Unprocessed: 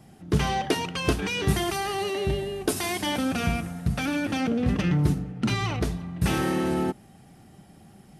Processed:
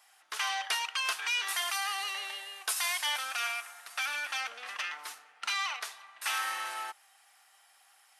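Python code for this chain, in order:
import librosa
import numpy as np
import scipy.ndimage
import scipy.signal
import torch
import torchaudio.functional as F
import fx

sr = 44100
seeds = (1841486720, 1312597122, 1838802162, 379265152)

y = scipy.signal.sosfilt(scipy.signal.butter(4, 1000.0, 'highpass', fs=sr, output='sos'), x)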